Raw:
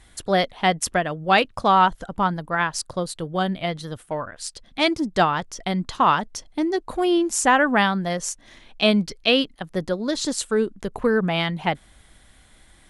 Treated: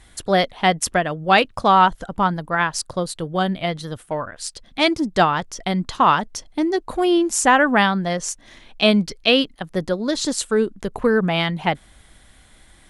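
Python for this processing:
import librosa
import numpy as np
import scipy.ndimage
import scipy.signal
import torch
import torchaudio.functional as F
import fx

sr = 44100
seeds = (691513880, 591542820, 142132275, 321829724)

y = fx.lowpass(x, sr, hz=8800.0, slope=12, at=(7.86, 8.29))
y = y * librosa.db_to_amplitude(2.5)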